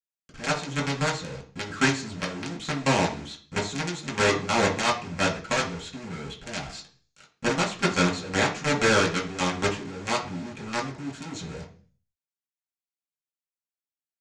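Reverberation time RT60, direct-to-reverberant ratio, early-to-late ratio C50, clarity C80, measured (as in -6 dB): 0.45 s, -3.5 dB, 10.5 dB, 15.5 dB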